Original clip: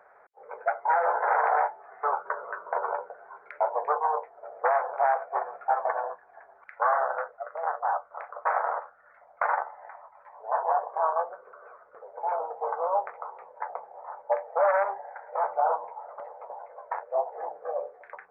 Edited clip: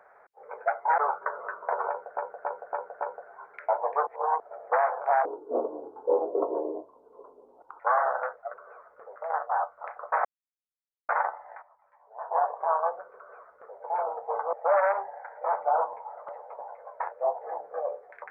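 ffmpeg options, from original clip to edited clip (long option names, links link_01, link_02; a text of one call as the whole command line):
ffmpeg -i in.wav -filter_complex "[0:a]asplit=17[link_01][link_02][link_03][link_04][link_05][link_06][link_07][link_08][link_09][link_10][link_11][link_12][link_13][link_14][link_15][link_16][link_17];[link_01]atrim=end=0.982[link_18];[link_02]atrim=start=2.018:end=3.212[link_19];[link_03]atrim=start=2.928:end=3.212[link_20];[link_04]atrim=start=2.928:end=3.212[link_21];[link_05]atrim=start=2.928:end=3.212[link_22];[link_06]atrim=start=2.928:end=3.992[link_23];[link_07]atrim=start=3.988:end=4.322,asetpts=PTS-STARTPTS,areverse[link_24];[link_08]atrim=start=4.318:end=5.174[link_25];[link_09]atrim=start=5.17:end=6.75,asetpts=PTS-STARTPTS,asetrate=27342,aresample=44100[link_26];[link_10]atrim=start=6.746:end=7.492[link_27];[link_11]atrim=start=11.488:end=12.112[link_28];[link_12]atrim=start=7.488:end=8.58,asetpts=PTS-STARTPTS,afade=type=out:start_time=1.088:duration=0.004:curve=hsin[link_29];[link_13]atrim=start=8.58:end=9.42,asetpts=PTS-STARTPTS,volume=0[link_30];[link_14]atrim=start=9.42:end=9.952,asetpts=PTS-STARTPTS,afade=type=in:duration=0.004:curve=hsin[link_31];[link_15]atrim=start=9.948:end=10.642,asetpts=PTS-STARTPTS,volume=-11.5dB[link_32];[link_16]atrim=start=10.638:end=12.862[link_33];[link_17]atrim=start=14.438[link_34];[link_18][link_19]acrossfade=duration=0.004:curve1=hsin:curve2=hsin[link_35];[link_35][link_20]acrossfade=duration=0.004:curve1=hsin:curve2=hsin[link_36];[link_36][link_21]acrossfade=duration=0.004:curve1=hsin:curve2=hsin[link_37];[link_37][link_22]acrossfade=duration=0.004:curve1=hsin:curve2=hsin[link_38];[link_38][link_23]acrossfade=duration=0.004:curve1=hsin:curve2=hsin[link_39];[link_39][link_24]acrossfade=duration=0.004:curve1=hsin:curve2=hsin[link_40];[link_40][link_25]acrossfade=duration=0.004:curve1=hsin:curve2=hsin[link_41];[link_41][link_26]acrossfade=duration=0.004:curve1=hsin:curve2=hsin[link_42];[link_42][link_27]acrossfade=duration=0.004:curve1=hsin:curve2=hsin[link_43];[link_43][link_28]acrossfade=duration=0.004:curve1=hsin:curve2=hsin[link_44];[link_29][link_30][link_31]concat=n=3:v=0:a=1[link_45];[link_44][link_45]acrossfade=duration=0.004:curve1=hsin:curve2=hsin[link_46];[link_46][link_32]acrossfade=duration=0.004:curve1=hsin:curve2=hsin[link_47];[link_47][link_33]acrossfade=duration=0.004:curve1=hsin:curve2=hsin[link_48];[link_48][link_34]acrossfade=duration=0.004:curve1=hsin:curve2=hsin" out.wav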